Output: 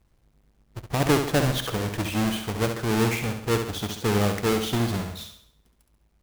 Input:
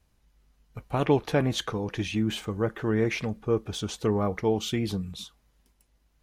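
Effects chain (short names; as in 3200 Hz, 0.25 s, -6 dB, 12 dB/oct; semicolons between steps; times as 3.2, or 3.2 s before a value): half-waves squared off; flutter echo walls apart 11.7 m, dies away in 0.6 s; gain -2.5 dB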